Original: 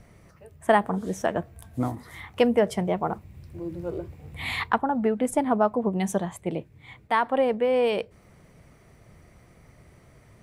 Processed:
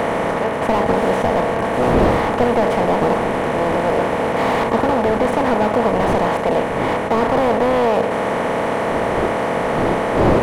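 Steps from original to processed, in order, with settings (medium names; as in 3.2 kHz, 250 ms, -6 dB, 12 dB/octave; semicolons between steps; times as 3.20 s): spectral levelling over time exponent 0.2; wind noise 500 Hz -24 dBFS; tone controls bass -3 dB, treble -9 dB; slew-rate limiter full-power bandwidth 170 Hz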